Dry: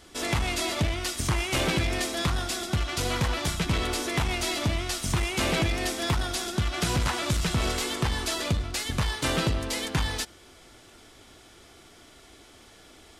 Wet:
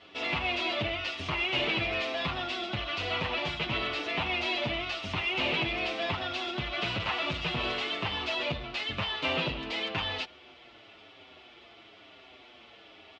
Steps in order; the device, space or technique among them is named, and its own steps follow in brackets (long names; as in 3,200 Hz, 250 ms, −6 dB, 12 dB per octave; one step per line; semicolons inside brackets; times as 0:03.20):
low-shelf EQ 400 Hz −9 dB
barber-pole flanger into a guitar amplifier (barber-pole flanger 7.1 ms −1 Hz; soft clipping −28.5 dBFS, distortion −15 dB; loudspeaker in its box 80–3,700 Hz, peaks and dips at 630 Hz +4 dB, 1,600 Hz −5 dB, 2,700 Hz +7 dB)
level +4.5 dB